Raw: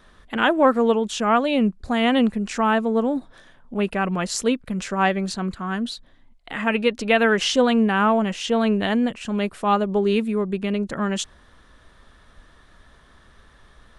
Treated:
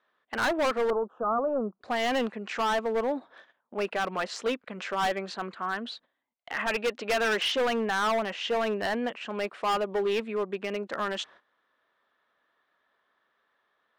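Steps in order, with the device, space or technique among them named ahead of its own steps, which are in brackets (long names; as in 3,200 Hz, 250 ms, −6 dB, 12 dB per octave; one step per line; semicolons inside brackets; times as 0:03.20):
walkie-talkie (band-pass filter 480–3,000 Hz; hard clipping −23 dBFS, distortion −6 dB; noise gate −51 dBFS, range −16 dB)
0:00.90–0:01.81: elliptic low-pass filter 1,300 Hz, stop band 40 dB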